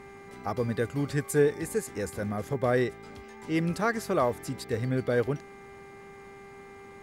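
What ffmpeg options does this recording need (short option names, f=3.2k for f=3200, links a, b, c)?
-af "bandreject=f=396.2:t=h:w=4,bandreject=f=792.4:t=h:w=4,bandreject=f=1.1886k:t=h:w=4,bandreject=f=1.5848k:t=h:w=4,bandreject=f=1.981k:t=h:w=4,bandreject=f=2.3772k:t=h:w=4,bandreject=f=2.1k:w=30"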